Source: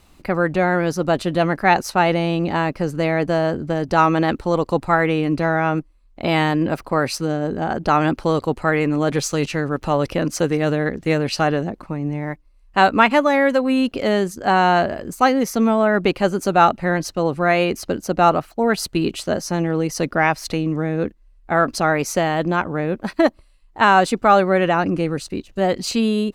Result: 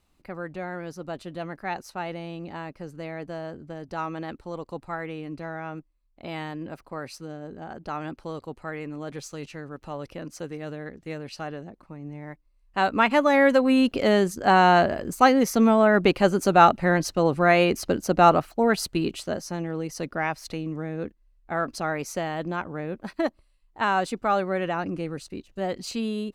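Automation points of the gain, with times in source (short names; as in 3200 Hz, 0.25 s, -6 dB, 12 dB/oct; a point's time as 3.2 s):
11.76 s -16 dB
12.87 s -8.5 dB
13.42 s -1.5 dB
18.48 s -1.5 dB
19.6 s -10 dB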